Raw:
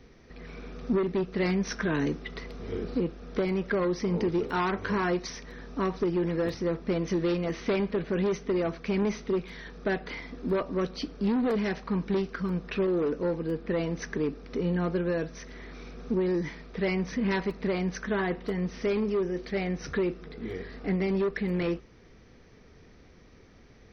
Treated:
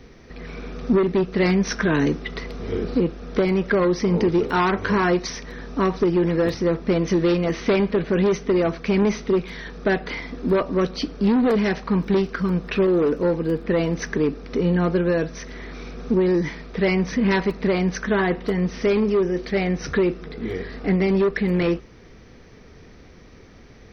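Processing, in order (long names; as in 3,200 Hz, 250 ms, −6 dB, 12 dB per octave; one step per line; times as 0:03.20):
0:12.01–0:14.07: surface crackle 25 per second −50 dBFS
level +8 dB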